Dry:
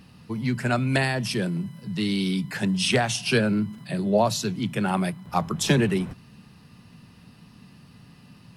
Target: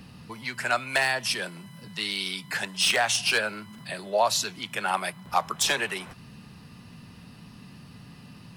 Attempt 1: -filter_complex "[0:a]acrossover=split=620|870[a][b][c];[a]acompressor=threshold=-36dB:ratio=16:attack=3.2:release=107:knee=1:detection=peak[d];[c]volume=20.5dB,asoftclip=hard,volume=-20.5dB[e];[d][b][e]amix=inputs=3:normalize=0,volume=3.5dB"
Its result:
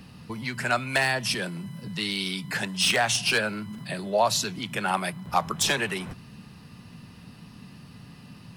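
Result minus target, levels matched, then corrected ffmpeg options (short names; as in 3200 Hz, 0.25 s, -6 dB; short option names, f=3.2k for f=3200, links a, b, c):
compressor: peak gain reduction -9 dB
-filter_complex "[0:a]acrossover=split=620|870[a][b][c];[a]acompressor=threshold=-45.5dB:ratio=16:attack=3.2:release=107:knee=1:detection=peak[d];[c]volume=20.5dB,asoftclip=hard,volume=-20.5dB[e];[d][b][e]amix=inputs=3:normalize=0,volume=3.5dB"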